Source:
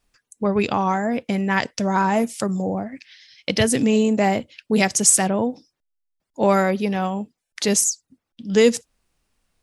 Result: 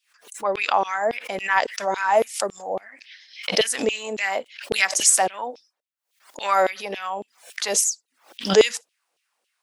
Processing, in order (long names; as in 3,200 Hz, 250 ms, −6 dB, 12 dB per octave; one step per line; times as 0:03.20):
auto-filter high-pass saw down 3.6 Hz 410–3,300 Hz
background raised ahead of every attack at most 140 dB per second
level −2 dB